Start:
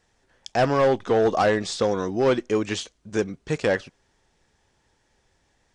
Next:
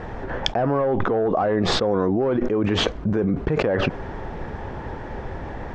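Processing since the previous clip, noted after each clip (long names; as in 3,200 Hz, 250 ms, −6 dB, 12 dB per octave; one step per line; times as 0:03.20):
low-pass filter 1,200 Hz 12 dB per octave
envelope flattener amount 100%
level −3.5 dB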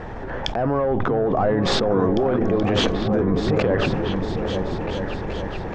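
transient designer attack −4 dB, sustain +4 dB
echo whose low-pass opens from repeat to repeat 427 ms, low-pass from 200 Hz, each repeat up 2 octaves, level −3 dB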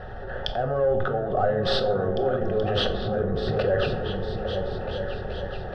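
phaser with its sweep stopped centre 1,500 Hz, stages 8
on a send at −6.5 dB: high-pass with resonance 320 Hz, resonance Q 3.6 + convolution reverb RT60 0.55 s, pre-delay 5 ms
on the sum: level −2.5 dB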